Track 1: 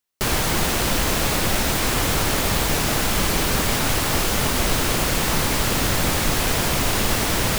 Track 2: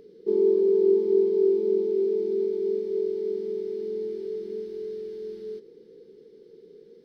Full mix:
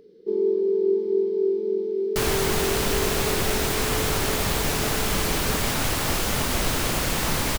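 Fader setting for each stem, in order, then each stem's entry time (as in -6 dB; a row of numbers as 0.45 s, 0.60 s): -3.5 dB, -1.5 dB; 1.95 s, 0.00 s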